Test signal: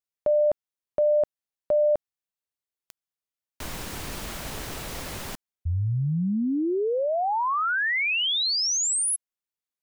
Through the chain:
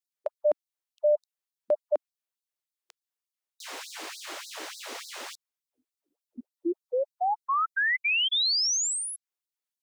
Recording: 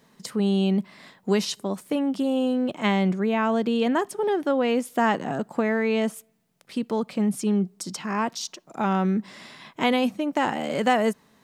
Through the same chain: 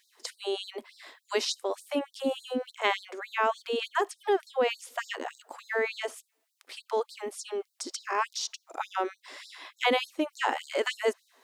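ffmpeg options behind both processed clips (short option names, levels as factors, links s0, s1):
-filter_complex "[0:a]acrossover=split=8200[s0][s1];[s1]acompressor=threshold=0.002:ratio=4:attack=1:release=60[s2];[s0][s2]amix=inputs=2:normalize=0,afftfilt=real='re*gte(b*sr/1024,250*pow(3800/250,0.5+0.5*sin(2*PI*3.4*pts/sr)))':imag='im*gte(b*sr/1024,250*pow(3800/250,0.5+0.5*sin(2*PI*3.4*pts/sr)))':win_size=1024:overlap=0.75"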